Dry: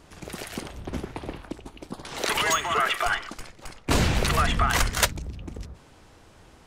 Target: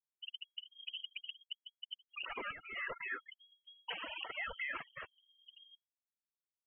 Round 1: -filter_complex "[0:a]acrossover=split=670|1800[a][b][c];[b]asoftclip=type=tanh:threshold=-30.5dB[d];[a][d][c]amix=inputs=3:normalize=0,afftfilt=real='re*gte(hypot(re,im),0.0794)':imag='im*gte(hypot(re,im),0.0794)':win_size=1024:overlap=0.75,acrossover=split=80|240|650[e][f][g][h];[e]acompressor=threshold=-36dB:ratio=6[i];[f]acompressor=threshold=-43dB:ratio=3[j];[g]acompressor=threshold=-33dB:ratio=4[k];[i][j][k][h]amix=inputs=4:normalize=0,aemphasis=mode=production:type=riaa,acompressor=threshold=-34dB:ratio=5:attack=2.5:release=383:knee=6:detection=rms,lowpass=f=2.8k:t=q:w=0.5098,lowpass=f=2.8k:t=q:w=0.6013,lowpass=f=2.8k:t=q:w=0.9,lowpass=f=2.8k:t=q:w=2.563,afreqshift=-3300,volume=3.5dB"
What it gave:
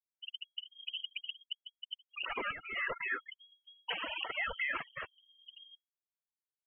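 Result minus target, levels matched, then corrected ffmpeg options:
compressor: peak gain reduction -5 dB
-filter_complex "[0:a]acrossover=split=670|1800[a][b][c];[b]asoftclip=type=tanh:threshold=-30.5dB[d];[a][d][c]amix=inputs=3:normalize=0,afftfilt=real='re*gte(hypot(re,im),0.0794)':imag='im*gte(hypot(re,im),0.0794)':win_size=1024:overlap=0.75,acrossover=split=80|240|650[e][f][g][h];[e]acompressor=threshold=-36dB:ratio=6[i];[f]acompressor=threshold=-43dB:ratio=3[j];[g]acompressor=threshold=-33dB:ratio=4[k];[i][j][k][h]amix=inputs=4:normalize=0,aemphasis=mode=production:type=riaa,acompressor=threshold=-40.5dB:ratio=5:attack=2.5:release=383:knee=6:detection=rms,lowpass=f=2.8k:t=q:w=0.5098,lowpass=f=2.8k:t=q:w=0.6013,lowpass=f=2.8k:t=q:w=0.9,lowpass=f=2.8k:t=q:w=2.563,afreqshift=-3300,volume=3.5dB"

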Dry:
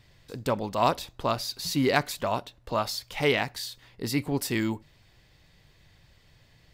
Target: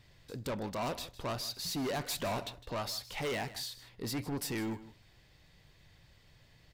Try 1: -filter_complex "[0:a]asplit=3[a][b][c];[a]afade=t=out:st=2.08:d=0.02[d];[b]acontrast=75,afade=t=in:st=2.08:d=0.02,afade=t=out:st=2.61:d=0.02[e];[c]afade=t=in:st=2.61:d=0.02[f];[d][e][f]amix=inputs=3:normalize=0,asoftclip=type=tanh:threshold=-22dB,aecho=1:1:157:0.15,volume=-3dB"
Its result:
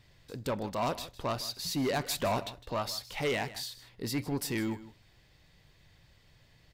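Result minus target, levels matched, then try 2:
soft clip: distortion -4 dB
-filter_complex "[0:a]asplit=3[a][b][c];[a]afade=t=out:st=2.08:d=0.02[d];[b]acontrast=75,afade=t=in:st=2.08:d=0.02,afade=t=out:st=2.61:d=0.02[e];[c]afade=t=in:st=2.61:d=0.02[f];[d][e][f]amix=inputs=3:normalize=0,asoftclip=type=tanh:threshold=-29dB,aecho=1:1:157:0.15,volume=-3dB"

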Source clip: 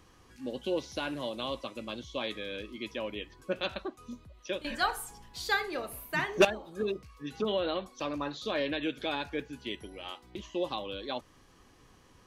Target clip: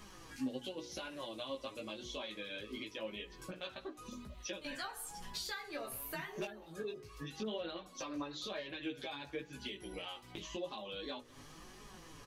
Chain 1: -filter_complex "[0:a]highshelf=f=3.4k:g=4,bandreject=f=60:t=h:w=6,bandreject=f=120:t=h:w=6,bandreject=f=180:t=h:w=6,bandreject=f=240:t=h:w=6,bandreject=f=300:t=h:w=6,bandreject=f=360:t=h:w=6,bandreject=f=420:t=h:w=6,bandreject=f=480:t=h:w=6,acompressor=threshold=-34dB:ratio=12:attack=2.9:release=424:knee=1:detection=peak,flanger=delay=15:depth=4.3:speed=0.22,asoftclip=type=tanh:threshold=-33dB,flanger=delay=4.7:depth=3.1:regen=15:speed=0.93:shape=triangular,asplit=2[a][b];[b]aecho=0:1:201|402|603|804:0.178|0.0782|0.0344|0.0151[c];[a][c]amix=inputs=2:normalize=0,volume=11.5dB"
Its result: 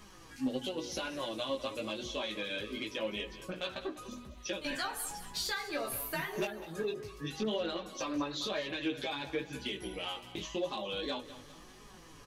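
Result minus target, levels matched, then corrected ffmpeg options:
compressor: peak gain reduction -7.5 dB; echo-to-direct +10.5 dB
-filter_complex "[0:a]highshelf=f=3.4k:g=4,bandreject=f=60:t=h:w=6,bandreject=f=120:t=h:w=6,bandreject=f=180:t=h:w=6,bandreject=f=240:t=h:w=6,bandreject=f=300:t=h:w=6,bandreject=f=360:t=h:w=6,bandreject=f=420:t=h:w=6,bandreject=f=480:t=h:w=6,acompressor=threshold=-42dB:ratio=12:attack=2.9:release=424:knee=1:detection=peak,flanger=delay=15:depth=4.3:speed=0.22,asoftclip=type=tanh:threshold=-33dB,flanger=delay=4.7:depth=3.1:regen=15:speed=0.93:shape=triangular,asplit=2[a][b];[b]aecho=0:1:201|402|603:0.0531|0.0234|0.0103[c];[a][c]amix=inputs=2:normalize=0,volume=11.5dB"

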